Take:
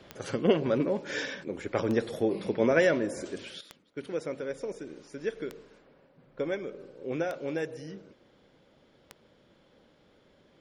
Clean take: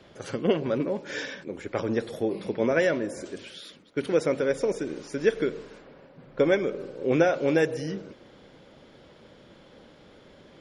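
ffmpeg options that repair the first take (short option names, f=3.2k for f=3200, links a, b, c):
-af "adeclick=t=4,asetnsamples=n=441:p=0,asendcmd='3.61 volume volume 10dB',volume=0dB"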